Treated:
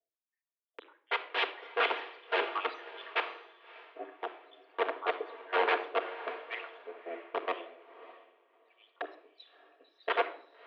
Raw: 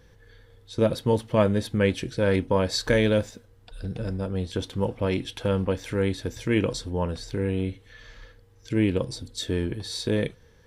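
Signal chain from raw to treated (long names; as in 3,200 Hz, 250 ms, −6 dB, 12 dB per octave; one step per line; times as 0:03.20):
time-frequency cells dropped at random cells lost 80%
0:08.76–0:09.80: parametric band 1,900 Hz −13.5 dB 0.78 octaves
wrap-around overflow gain 21.5 dB
single-sideband voice off tune +170 Hz 190–3,100 Hz
on a send: feedback delay with all-pass diffusion 605 ms, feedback 44%, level −7 dB
on the sum: rectangular room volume 3,700 cubic metres, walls furnished, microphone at 1.7 metres
multiband upward and downward expander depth 100%
level −3.5 dB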